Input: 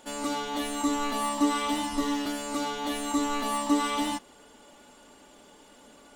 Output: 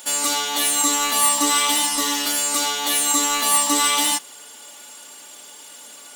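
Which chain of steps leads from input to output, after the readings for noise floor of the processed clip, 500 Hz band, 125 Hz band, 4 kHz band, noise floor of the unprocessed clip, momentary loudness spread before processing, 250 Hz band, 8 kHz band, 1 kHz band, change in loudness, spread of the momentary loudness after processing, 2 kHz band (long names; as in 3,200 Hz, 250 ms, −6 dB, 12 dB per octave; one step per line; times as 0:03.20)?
−42 dBFS, +2.5 dB, can't be measured, +14.5 dB, −55 dBFS, 5 LU, −1.5 dB, +20.0 dB, +6.5 dB, +11.5 dB, 4 LU, +10.5 dB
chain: spectral tilt +4.5 dB per octave
level +6.5 dB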